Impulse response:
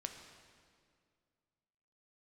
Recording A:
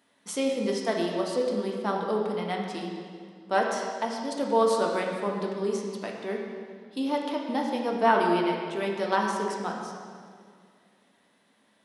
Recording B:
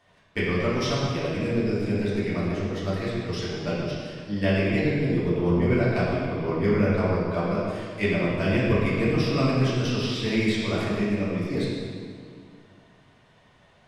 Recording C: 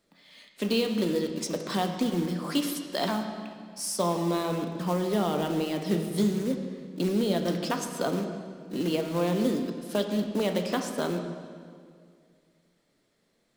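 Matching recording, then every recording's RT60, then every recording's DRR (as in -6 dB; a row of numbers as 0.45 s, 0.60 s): C; 2.1 s, 2.1 s, 2.1 s; -1.0 dB, -9.0 dB, 4.5 dB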